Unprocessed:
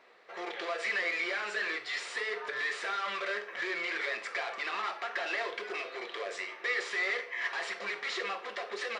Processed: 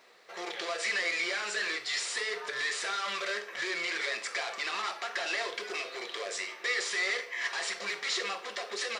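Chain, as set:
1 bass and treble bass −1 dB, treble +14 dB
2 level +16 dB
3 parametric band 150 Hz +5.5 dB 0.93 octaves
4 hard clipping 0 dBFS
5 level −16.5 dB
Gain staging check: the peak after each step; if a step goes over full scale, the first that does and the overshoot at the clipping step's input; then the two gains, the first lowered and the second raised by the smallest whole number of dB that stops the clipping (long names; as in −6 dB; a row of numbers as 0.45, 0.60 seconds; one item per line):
−19.0, −3.0, −3.0, −3.0, −19.5 dBFS
no step passes full scale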